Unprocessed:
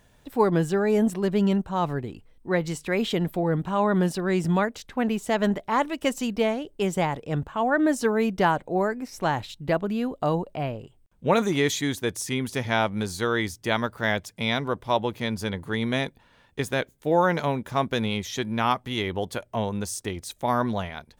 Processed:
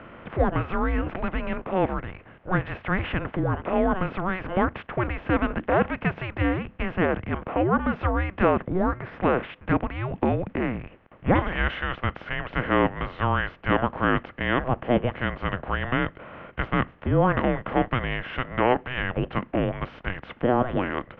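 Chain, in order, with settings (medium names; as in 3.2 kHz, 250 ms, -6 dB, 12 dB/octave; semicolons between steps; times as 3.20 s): spectral levelling over time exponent 0.6; mistuned SSB -370 Hz 460–2900 Hz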